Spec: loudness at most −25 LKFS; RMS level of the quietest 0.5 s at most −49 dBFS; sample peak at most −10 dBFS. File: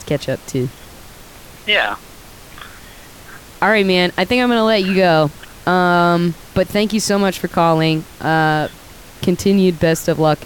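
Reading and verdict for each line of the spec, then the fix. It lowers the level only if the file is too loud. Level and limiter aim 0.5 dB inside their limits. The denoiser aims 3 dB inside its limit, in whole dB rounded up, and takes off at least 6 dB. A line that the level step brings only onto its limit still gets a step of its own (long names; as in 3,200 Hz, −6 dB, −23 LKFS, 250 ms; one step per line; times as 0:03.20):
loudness −16.0 LKFS: out of spec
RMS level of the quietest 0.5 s −39 dBFS: out of spec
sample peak −3.0 dBFS: out of spec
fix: broadband denoise 6 dB, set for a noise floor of −39 dBFS
level −9.5 dB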